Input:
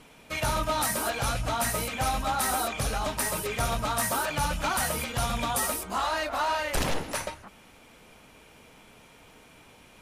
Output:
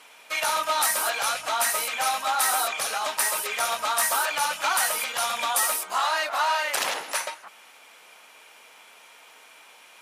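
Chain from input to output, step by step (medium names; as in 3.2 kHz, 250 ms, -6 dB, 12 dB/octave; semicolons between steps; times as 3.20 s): high-pass 800 Hz 12 dB/octave; trim +5.5 dB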